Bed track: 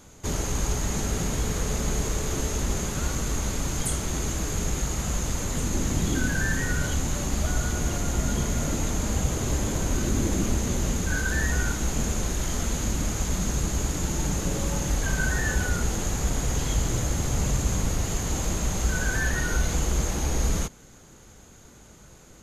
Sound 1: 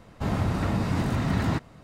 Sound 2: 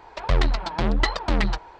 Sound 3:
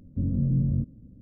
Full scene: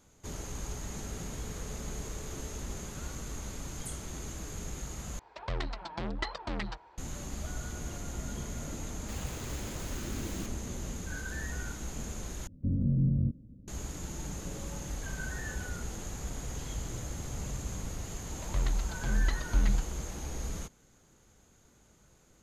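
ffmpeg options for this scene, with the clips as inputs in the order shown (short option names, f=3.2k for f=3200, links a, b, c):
-filter_complex "[2:a]asplit=2[a][b];[0:a]volume=-12.5dB[c];[a]highpass=47[d];[1:a]aeval=exprs='(mod(35.5*val(0)+1,2)-1)/35.5':c=same[e];[b]asubboost=boost=9.5:cutoff=220[f];[c]asplit=3[g][h][i];[g]atrim=end=5.194[j];[d]atrim=end=1.79,asetpts=PTS-STARTPTS,volume=-12dB[k];[h]atrim=start=6.976:end=12.474[l];[3:a]atrim=end=1.21,asetpts=PTS-STARTPTS,volume=-3dB[m];[i]atrim=start=13.676[n];[e]atrim=end=1.83,asetpts=PTS-STARTPTS,volume=-12.5dB,afade=t=in:d=0.004:c=hsin,afade=t=out:st=1.826:d=0.004:c=hsin,adelay=8880[o];[f]atrim=end=1.79,asetpts=PTS-STARTPTS,volume=-16dB,afade=t=in:d=0.004:c=hsin,afade=t=out:st=1.786:d=0.004:c=hsin,adelay=18250[p];[j][k]acrossfade=d=0.004:c1=hsin:c2=hsin[q];[q][l]acrossfade=d=0.004:c1=hsin:c2=hsin[r];[r][m]acrossfade=d=0.004:c1=hsin:c2=hsin[s];[s][n]acrossfade=d=0.004:c1=hsin:c2=hsin[t];[t][o][p]amix=inputs=3:normalize=0"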